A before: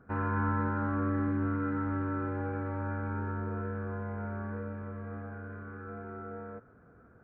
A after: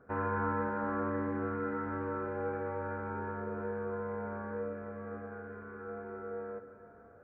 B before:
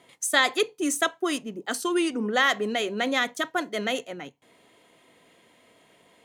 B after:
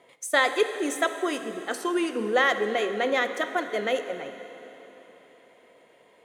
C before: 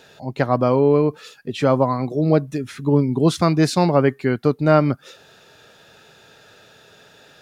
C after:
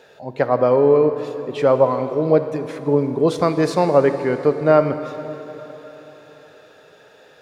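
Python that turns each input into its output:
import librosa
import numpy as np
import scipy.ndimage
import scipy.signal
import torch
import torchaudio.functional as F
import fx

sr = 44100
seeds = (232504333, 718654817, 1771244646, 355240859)

y = fx.graphic_eq(x, sr, hz=(500, 1000, 2000), db=(11, 4, 5))
y = fx.rev_plate(y, sr, seeds[0], rt60_s=3.9, hf_ratio=0.9, predelay_ms=0, drr_db=8.5)
y = y * 10.0 ** (-7.0 / 20.0)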